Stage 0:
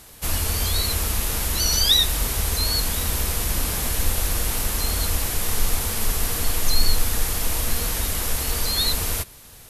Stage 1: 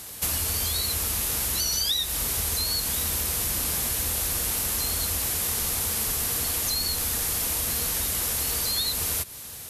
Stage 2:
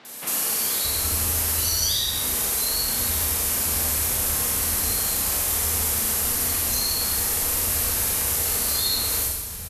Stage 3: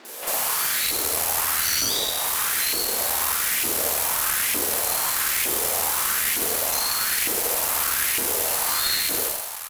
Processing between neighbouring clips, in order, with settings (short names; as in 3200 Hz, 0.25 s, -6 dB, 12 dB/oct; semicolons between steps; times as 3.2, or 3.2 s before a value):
HPF 64 Hz; high shelf 3800 Hz +6.5 dB; compressor 6:1, threshold -26 dBFS, peak gain reduction 15 dB; gain +2 dB
three bands offset in time mids, highs, lows 50/620 ms, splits 170/3600 Hz; Schroeder reverb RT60 1.1 s, combs from 29 ms, DRR -1.5 dB
half-wave rectifier; LFO high-pass saw up 1.1 Hz 310–2400 Hz; tube stage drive 17 dB, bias 0.6; gain +8.5 dB